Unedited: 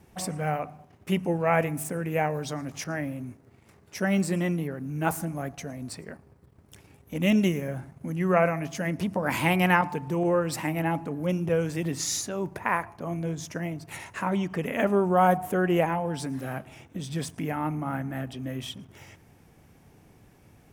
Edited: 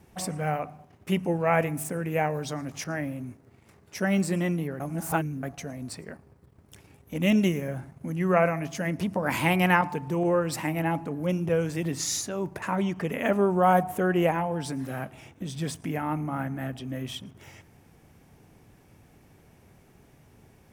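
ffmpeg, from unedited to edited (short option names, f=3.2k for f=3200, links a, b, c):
-filter_complex "[0:a]asplit=4[a][b][c][d];[a]atrim=end=4.802[e];[b]atrim=start=4.798:end=5.432,asetpts=PTS-STARTPTS,areverse[f];[c]atrim=start=5.428:end=12.622[g];[d]atrim=start=14.158[h];[e][f]acrossfade=d=0.004:c1=hsin:c2=hsin[i];[i][g]acrossfade=d=0.004:c1=hsin:c2=hsin[j];[j][h]acrossfade=d=0.004:c1=hsin:c2=hsin"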